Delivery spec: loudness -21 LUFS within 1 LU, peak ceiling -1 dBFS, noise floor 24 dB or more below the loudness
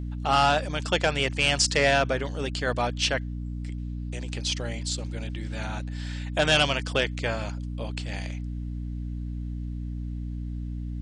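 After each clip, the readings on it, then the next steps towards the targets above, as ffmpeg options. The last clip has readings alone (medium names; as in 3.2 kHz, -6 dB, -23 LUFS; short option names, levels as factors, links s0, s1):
hum 60 Hz; highest harmonic 300 Hz; hum level -30 dBFS; loudness -27.5 LUFS; peak level -11.0 dBFS; loudness target -21.0 LUFS
-> -af "bandreject=f=60:t=h:w=4,bandreject=f=120:t=h:w=4,bandreject=f=180:t=h:w=4,bandreject=f=240:t=h:w=4,bandreject=f=300:t=h:w=4"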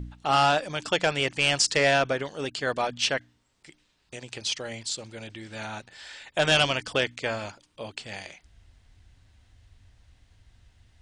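hum not found; loudness -26.0 LUFS; peak level -11.5 dBFS; loudness target -21.0 LUFS
-> -af "volume=1.78"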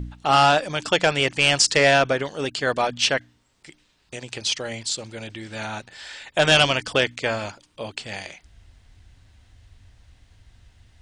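loudness -20.5 LUFS; peak level -6.5 dBFS; noise floor -63 dBFS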